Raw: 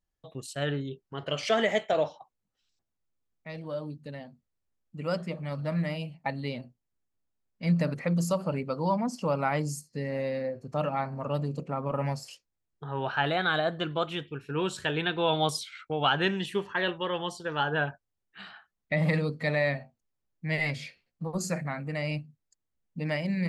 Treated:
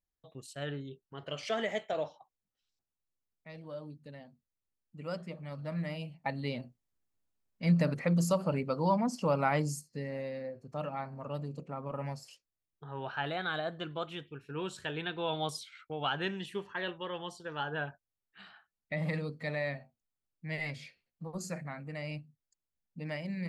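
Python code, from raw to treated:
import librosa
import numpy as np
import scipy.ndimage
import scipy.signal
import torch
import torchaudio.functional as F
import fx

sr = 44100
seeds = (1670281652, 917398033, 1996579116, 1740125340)

y = fx.gain(x, sr, db=fx.line((5.58, -8.0), (6.6, -1.0), (9.6, -1.0), (10.3, -8.0)))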